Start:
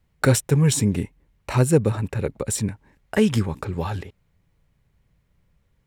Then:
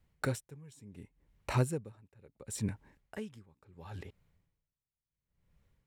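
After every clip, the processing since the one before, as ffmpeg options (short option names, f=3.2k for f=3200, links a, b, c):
-af "aeval=exprs='val(0)*pow(10,-31*(0.5-0.5*cos(2*PI*0.71*n/s))/20)':c=same,volume=-5dB"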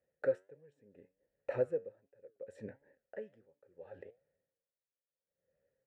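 -filter_complex "[0:a]asplit=3[a][b][c];[a]bandpass=f=530:t=q:w=8,volume=0dB[d];[b]bandpass=f=1.84k:t=q:w=8,volume=-6dB[e];[c]bandpass=f=2.48k:t=q:w=8,volume=-9dB[f];[d][e][f]amix=inputs=3:normalize=0,flanger=delay=6.9:depth=4.1:regen=81:speed=1.4:shape=sinusoidal,highshelf=f=1.8k:t=q:w=1.5:g=-11.5,volume=14dB"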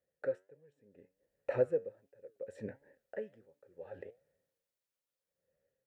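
-af "dynaudnorm=f=470:g=5:m=7dB,volume=-3.5dB"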